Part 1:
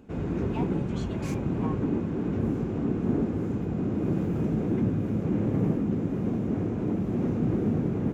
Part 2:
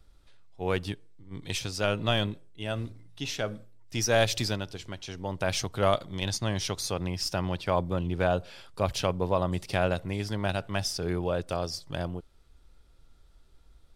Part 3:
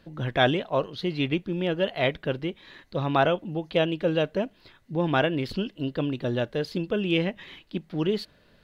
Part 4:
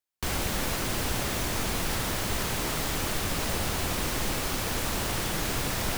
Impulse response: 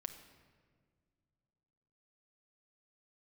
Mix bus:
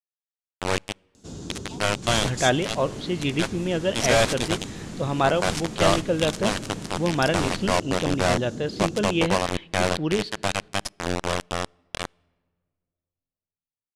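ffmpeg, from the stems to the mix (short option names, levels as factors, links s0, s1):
-filter_complex "[0:a]acompressor=threshold=0.0447:ratio=6,aexciter=amount=8.1:drive=9.8:freq=3600,adelay=1150,volume=0.501[s0];[1:a]acrusher=bits=3:mix=0:aa=0.000001,volume=1.26,asplit=3[s1][s2][s3];[s2]volume=0.0891[s4];[2:a]adelay=2050,volume=0.891,asplit=2[s5][s6];[s6]volume=0.335[s7];[3:a]adelay=1800,volume=0.944[s8];[s3]apad=whole_len=342680[s9];[s8][s9]sidechaingate=range=0.224:threshold=0.0501:ratio=16:detection=peak[s10];[4:a]atrim=start_sample=2205[s11];[s4][s7]amix=inputs=2:normalize=0[s12];[s12][s11]afir=irnorm=-1:irlink=0[s13];[s0][s1][s5][s10][s13]amix=inputs=5:normalize=0,lowpass=f=9500:w=0.5412,lowpass=f=9500:w=1.3066"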